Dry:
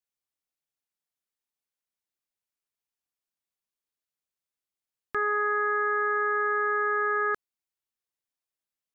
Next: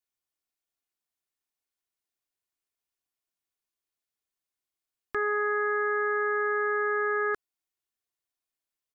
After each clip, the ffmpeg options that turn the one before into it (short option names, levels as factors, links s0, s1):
-af "aecho=1:1:2.8:0.33"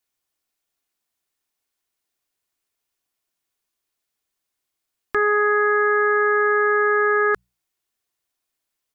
-af "bandreject=f=60:t=h:w=6,bandreject=f=120:t=h:w=6,bandreject=f=180:t=h:w=6,volume=2.82"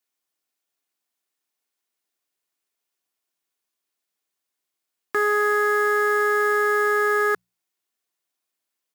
-af "acrusher=bits=4:mode=log:mix=0:aa=0.000001,highpass=170,volume=0.794"